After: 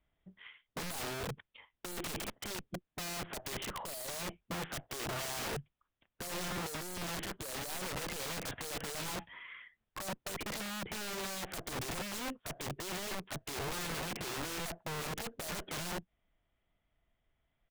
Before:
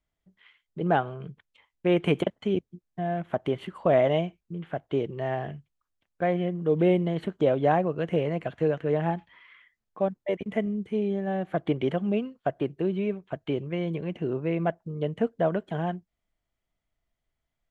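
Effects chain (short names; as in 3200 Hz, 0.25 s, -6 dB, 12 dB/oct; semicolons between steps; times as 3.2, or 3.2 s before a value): tube stage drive 34 dB, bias 0.3; downsampling 8000 Hz; wrapped overs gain 39 dB; gain +5 dB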